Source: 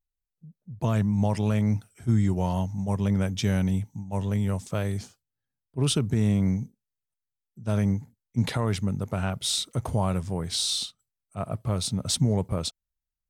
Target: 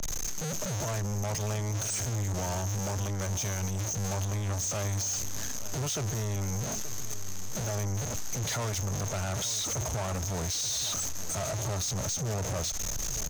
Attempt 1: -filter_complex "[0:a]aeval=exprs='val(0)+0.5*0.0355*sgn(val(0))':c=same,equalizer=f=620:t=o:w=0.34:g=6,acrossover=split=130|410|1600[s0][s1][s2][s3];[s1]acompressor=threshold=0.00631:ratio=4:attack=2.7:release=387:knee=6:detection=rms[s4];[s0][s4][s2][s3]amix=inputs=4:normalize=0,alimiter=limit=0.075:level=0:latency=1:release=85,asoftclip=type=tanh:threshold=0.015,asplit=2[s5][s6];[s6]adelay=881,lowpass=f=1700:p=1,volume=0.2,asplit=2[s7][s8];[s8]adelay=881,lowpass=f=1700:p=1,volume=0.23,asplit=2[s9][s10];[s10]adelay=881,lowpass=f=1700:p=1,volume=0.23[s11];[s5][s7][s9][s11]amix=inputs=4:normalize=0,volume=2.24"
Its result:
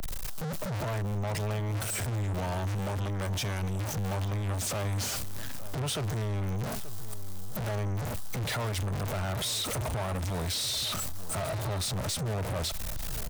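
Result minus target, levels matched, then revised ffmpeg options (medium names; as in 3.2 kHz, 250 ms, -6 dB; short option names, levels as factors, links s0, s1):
8 kHz band -6.5 dB
-filter_complex "[0:a]aeval=exprs='val(0)+0.5*0.0355*sgn(val(0))':c=same,lowpass=f=6400:t=q:w=15,equalizer=f=620:t=o:w=0.34:g=6,acrossover=split=130|410|1600[s0][s1][s2][s3];[s1]acompressor=threshold=0.00631:ratio=4:attack=2.7:release=387:knee=6:detection=rms[s4];[s0][s4][s2][s3]amix=inputs=4:normalize=0,alimiter=limit=0.075:level=0:latency=1:release=85,asoftclip=type=tanh:threshold=0.015,asplit=2[s5][s6];[s6]adelay=881,lowpass=f=1700:p=1,volume=0.2,asplit=2[s7][s8];[s8]adelay=881,lowpass=f=1700:p=1,volume=0.23,asplit=2[s9][s10];[s10]adelay=881,lowpass=f=1700:p=1,volume=0.23[s11];[s5][s7][s9][s11]amix=inputs=4:normalize=0,volume=2.24"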